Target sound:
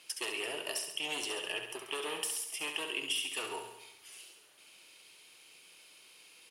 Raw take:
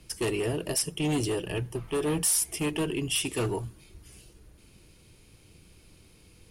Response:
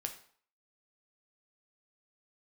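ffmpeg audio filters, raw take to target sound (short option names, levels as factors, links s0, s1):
-af "highpass=750,acompressor=threshold=0.0141:ratio=10,equalizer=f=3000:t=o:w=0.68:g=6,aecho=1:1:68|136|204|272|340|408|476:0.447|0.259|0.15|0.0872|0.0505|0.0293|0.017,volume=1.12"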